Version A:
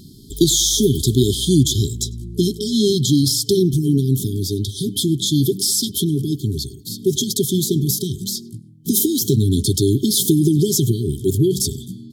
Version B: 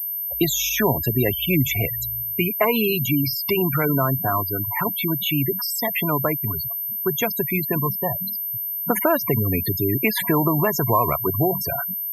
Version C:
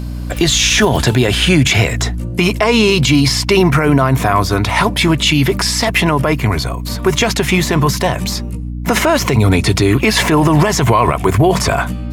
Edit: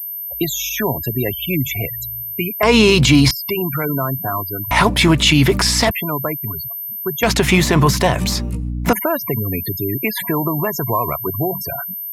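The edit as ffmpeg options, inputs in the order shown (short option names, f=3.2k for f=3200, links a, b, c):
-filter_complex "[2:a]asplit=3[a][b][c];[1:a]asplit=4[d][e][f][g];[d]atrim=end=2.632[h];[a]atrim=start=2.628:end=3.312[i];[e]atrim=start=3.308:end=4.712[j];[b]atrim=start=4.708:end=5.912[k];[f]atrim=start=5.908:end=7.232[l];[c]atrim=start=7.228:end=8.932[m];[g]atrim=start=8.928[n];[h][i]acrossfade=d=0.004:c1=hsin:c2=hsin[o];[o][j]acrossfade=d=0.004:c1=hsin:c2=hsin[p];[p][k]acrossfade=d=0.004:c1=hsin:c2=hsin[q];[q][l]acrossfade=d=0.004:c1=hsin:c2=hsin[r];[r][m]acrossfade=d=0.004:c1=hsin:c2=hsin[s];[s][n]acrossfade=d=0.004:c1=hsin:c2=hsin"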